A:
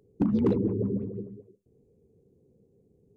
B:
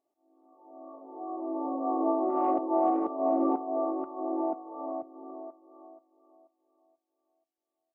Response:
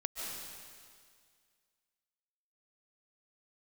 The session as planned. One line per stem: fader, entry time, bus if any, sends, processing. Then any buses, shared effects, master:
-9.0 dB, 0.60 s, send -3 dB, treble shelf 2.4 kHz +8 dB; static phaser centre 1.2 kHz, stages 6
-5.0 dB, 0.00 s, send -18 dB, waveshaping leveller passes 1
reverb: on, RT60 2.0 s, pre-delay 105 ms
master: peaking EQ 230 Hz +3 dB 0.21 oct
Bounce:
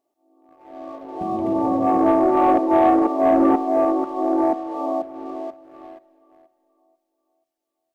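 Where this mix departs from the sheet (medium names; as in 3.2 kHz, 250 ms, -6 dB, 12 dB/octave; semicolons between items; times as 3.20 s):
stem A: entry 0.60 s -> 1.00 s; stem B -5.0 dB -> +7.0 dB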